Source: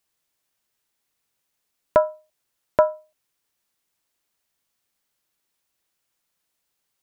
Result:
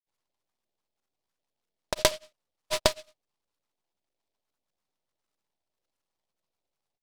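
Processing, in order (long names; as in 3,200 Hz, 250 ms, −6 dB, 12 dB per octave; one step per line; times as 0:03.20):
gain on one half-wave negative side −12 dB
downward compressor 4 to 1, threshold −21 dBFS, peak gain reduction 7.5 dB
auto-filter low-pass saw up 4.8 Hz 540–1,600 Hz
granular cloud, spray 100 ms
short delay modulated by noise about 3,500 Hz, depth 0.17 ms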